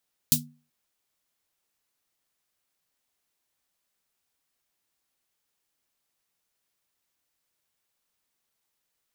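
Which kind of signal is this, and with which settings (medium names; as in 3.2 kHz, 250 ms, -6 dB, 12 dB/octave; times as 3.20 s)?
snare drum length 0.38 s, tones 150 Hz, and 240 Hz, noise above 3.7 kHz, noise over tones 11 dB, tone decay 0.38 s, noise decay 0.14 s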